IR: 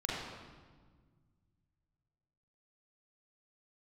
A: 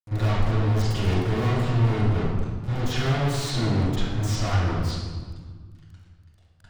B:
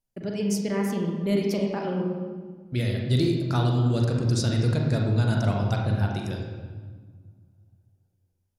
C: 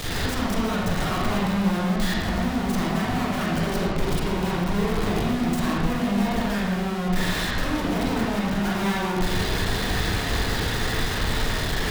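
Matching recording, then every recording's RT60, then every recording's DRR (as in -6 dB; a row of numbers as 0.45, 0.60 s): C; 1.5, 1.6, 1.5 s; -15.5, 0.0, -6.0 dB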